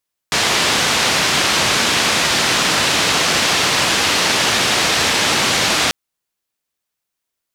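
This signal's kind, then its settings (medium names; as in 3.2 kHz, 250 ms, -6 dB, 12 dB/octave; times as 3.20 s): noise band 87–4800 Hz, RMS -16 dBFS 5.59 s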